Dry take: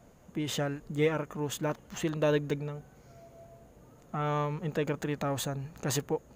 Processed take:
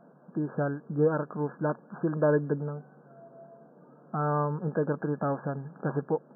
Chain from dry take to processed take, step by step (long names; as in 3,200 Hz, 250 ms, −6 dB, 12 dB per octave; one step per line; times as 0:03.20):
brick-wall band-pass 130–1,700 Hz
level +3 dB